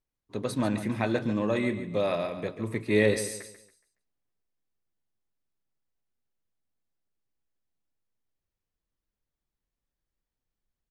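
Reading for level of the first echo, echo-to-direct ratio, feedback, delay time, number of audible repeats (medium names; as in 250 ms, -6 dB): -11.5 dB, -11.0 dB, 35%, 140 ms, 3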